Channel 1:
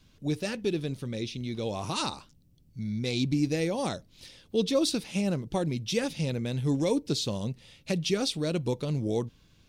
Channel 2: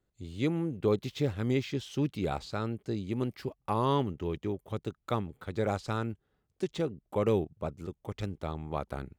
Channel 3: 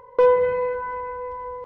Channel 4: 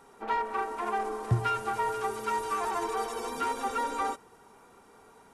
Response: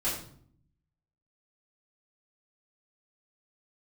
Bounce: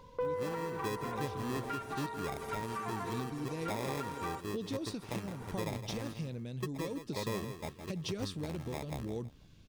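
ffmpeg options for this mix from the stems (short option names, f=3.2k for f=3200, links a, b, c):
-filter_complex "[0:a]tremolo=f=0.84:d=0.75,volume=-3dB[a];[1:a]acrusher=samples=30:mix=1:aa=0.000001,volume=-6dB,asplit=2[b][c];[c]volume=-11dB[d];[2:a]volume=-11dB[e];[3:a]equalizer=f=1.9k:w=1.5:g=5.5,acompressor=mode=upward:threshold=-41dB:ratio=2.5,highpass=290,adelay=250,volume=-1.5dB[f];[a][f]amix=inputs=2:normalize=0,lowshelf=f=470:g=6,acompressor=threshold=-35dB:ratio=6,volume=0dB[g];[d]aecho=0:1:163|326|489|652:1|0.3|0.09|0.027[h];[b][e][g][h]amix=inputs=4:normalize=0,alimiter=level_in=3dB:limit=-24dB:level=0:latency=1:release=426,volume=-3dB"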